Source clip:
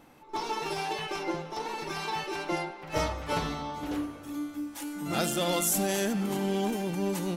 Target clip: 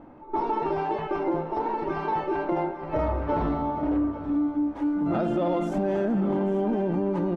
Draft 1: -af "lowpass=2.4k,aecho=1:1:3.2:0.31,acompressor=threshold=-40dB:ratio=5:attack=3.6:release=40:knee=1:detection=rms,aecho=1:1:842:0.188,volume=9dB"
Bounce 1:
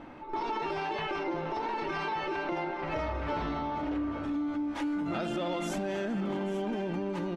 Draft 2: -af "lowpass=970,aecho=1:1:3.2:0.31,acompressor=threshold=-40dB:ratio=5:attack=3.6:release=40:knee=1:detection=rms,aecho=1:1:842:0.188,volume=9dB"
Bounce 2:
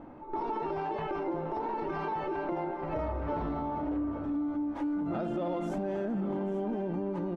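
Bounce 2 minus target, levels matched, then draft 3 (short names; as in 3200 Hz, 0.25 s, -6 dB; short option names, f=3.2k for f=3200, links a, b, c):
compressor: peak gain reduction +7.5 dB
-af "lowpass=970,aecho=1:1:3.2:0.31,acompressor=threshold=-30.5dB:ratio=5:attack=3.6:release=40:knee=1:detection=rms,aecho=1:1:842:0.188,volume=9dB"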